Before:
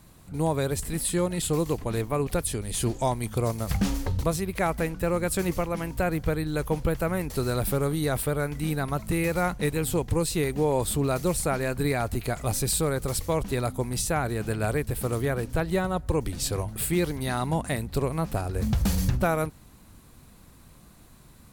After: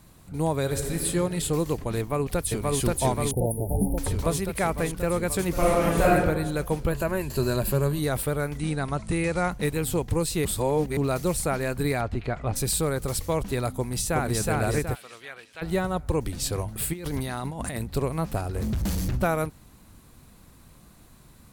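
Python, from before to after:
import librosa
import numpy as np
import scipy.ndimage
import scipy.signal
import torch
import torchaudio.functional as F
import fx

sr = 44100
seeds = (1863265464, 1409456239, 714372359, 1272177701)

y = fx.reverb_throw(x, sr, start_s=0.6, length_s=0.42, rt60_s=2.8, drr_db=3.0)
y = fx.echo_throw(y, sr, start_s=1.98, length_s=0.81, ms=530, feedback_pct=75, wet_db=-0.5)
y = fx.brickwall_bandstop(y, sr, low_hz=920.0, high_hz=9300.0, at=(3.31, 3.98))
y = fx.reverb_throw(y, sr, start_s=5.52, length_s=0.6, rt60_s=1.1, drr_db=-7.0)
y = fx.ripple_eq(y, sr, per_octave=1.4, db=9, at=(6.91, 7.99))
y = fx.steep_lowpass(y, sr, hz=10000.0, slope=96, at=(8.57, 9.5), fade=0.02)
y = fx.lowpass(y, sr, hz=fx.line((12.0, 3800.0), (12.55, 2300.0)), slope=12, at=(12.0, 12.55), fade=0.02)
y = fx.echo_throw(y, sr, start_s=13.75, length_s=0.67, ms=370, feedback_pct=40, wet_db=-1.5)
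y = fx.bandpass_q(y, sr, hz=2900.0, q=1.5, at=(14.94, 15.61), fade=0.02)
y = fx.over_compress(y, sr, threshold_db=-33.0, ratio=-1.0, at=(16.92, 17.82), fade=0.02)
y = fx.clip_hard(y, sr, threshold_db=-23.5, at=(18.39, 19.14))
y = fx.edit(y, sr, fx.reverse_span(start_s=10.45, length_s=0.52), tone=tone)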